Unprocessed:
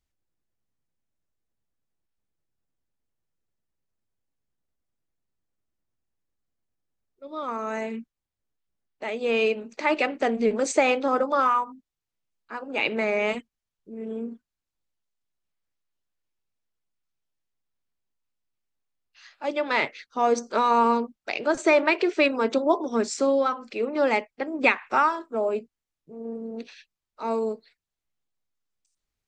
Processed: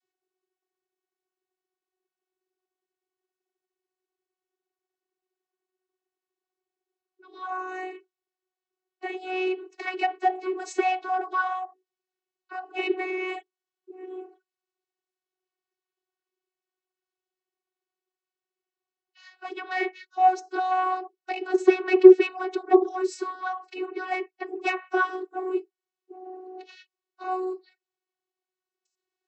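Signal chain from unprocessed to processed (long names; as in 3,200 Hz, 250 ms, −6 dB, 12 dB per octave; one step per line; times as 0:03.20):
dynamic equaliser 330 Hz, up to +4 dB, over −34 dBFS, Q 0.92
in parallel at 0 dB: downward compressor, threshold −34 dBFS, peak gain reduction 19.5 dB
on the sum: sine wavefolder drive 5 dB, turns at −4 dBFS
channel vocoder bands 32, saw 371 Hz
level −10.5 dB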